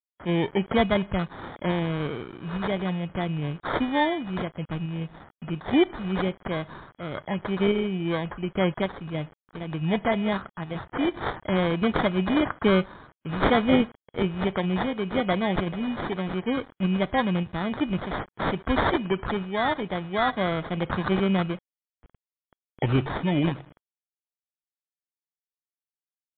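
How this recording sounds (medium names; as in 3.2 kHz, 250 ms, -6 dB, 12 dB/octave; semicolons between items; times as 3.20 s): a quantiser's noise floor 8-bit, dither none; random-step tremolo; aliases and images of a low sample rate 2.7 kHz, jitter 0%; MP3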